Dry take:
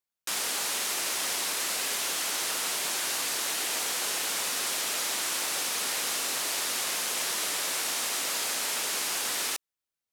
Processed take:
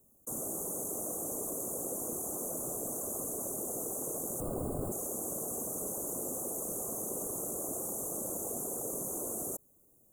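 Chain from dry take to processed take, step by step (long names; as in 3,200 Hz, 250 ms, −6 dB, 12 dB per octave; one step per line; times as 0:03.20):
0:04.40–0:04.92: sample-rate reduction 6,100 Hz, jitter 0%
Chebyshev band-stop filter 1,000–6,300 Hz, order 4
high-shelf EQ 2,700 Hz −9 dB
phaser with its sweep stopped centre 2,200 Hz, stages 4
random phases in short frames
envelope flattener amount 50%
level +3.5 dB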